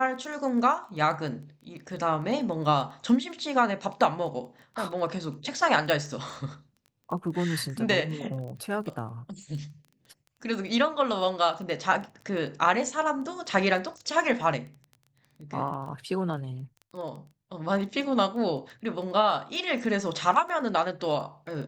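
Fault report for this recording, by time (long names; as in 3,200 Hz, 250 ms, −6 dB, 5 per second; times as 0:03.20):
surface crackle 13 per second −37 dBFS
0:05.90: click −12 dBFS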